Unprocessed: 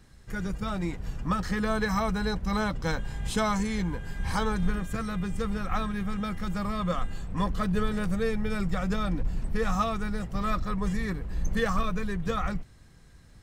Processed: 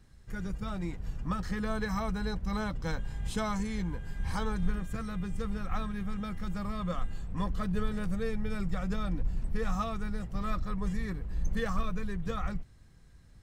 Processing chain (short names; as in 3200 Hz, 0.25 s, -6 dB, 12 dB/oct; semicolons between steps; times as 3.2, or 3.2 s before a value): low shelf 160 Hz +5.5 dB; gain -7 dB